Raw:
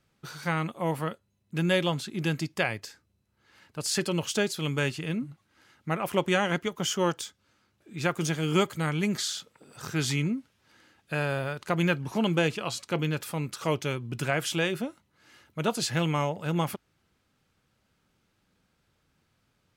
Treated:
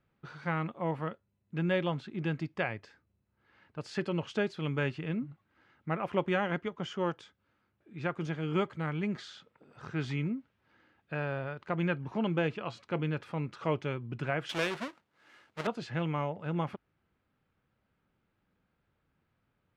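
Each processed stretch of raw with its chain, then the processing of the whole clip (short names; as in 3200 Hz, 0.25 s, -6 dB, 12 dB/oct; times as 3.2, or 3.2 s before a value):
14.49–15.67 half-waves squared off + RIAA curve recording
whole clip: LPF 2300 Hz 12 dB/oct; vocal rider 2 s; gain -4.5 dB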